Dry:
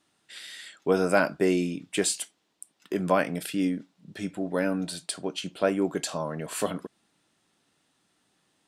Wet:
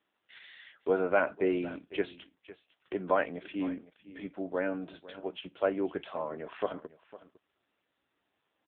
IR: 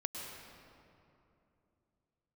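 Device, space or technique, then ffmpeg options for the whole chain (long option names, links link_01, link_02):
satellite phone: -af "highpass=310,lowpass=3200,aecho=1:1:505:0.141,volume=-2.5dB" -ar 8000 -c:a libopencore_amrnb -b:a 6700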